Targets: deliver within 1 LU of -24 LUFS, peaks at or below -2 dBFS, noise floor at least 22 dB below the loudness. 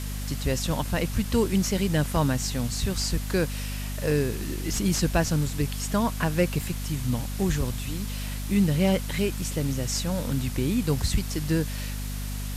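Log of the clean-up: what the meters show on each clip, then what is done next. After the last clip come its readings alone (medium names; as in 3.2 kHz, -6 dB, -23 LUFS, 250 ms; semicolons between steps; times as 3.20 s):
hum 50 Hz; highest harmonic 250 Hz; hum level -30 dBFS; noise floor -32 dBFS; noise floor target -49 dBFS; loudness -27.0 LUFS; peak level -11.0 dBFS; loudness target -24.0 LUFS
-> hum notches 50/100/150/200/250 Hz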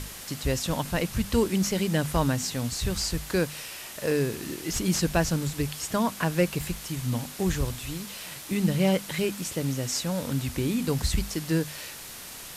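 hum not found; noise floor -42 dBFS; noise floor target -50 dBFS
-> noise reduction 8 dB, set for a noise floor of -42 dBFS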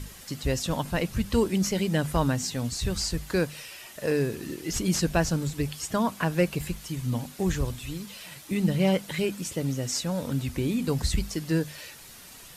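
noise floor -47 dBFS; noise floor target -50 dBFS
-> noise reduction 6 dB, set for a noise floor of -47 dBFS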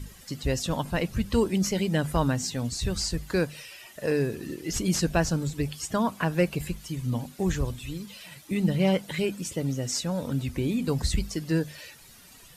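noise floor -51 dBFS; loudness -28.0 LUFS; peak level -11.5 dBFS; loudness target -24.0 LUFS
-> trim +4 dB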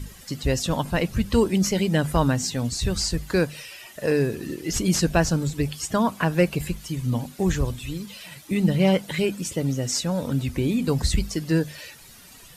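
loudness -24.0 LUFS; peak level -7.5 dBFS; noise floor -47 dBFS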